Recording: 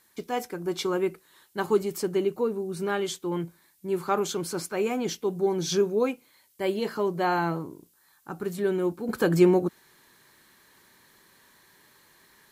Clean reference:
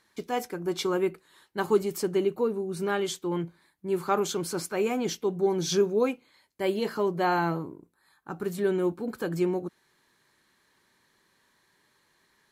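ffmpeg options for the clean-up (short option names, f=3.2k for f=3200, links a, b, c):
-af "agate=range=-21dB:threshold=-53dB,asetnsamples=n=441:p=0,asendcmd='9.09 volume volume -8dB',volume=0dB"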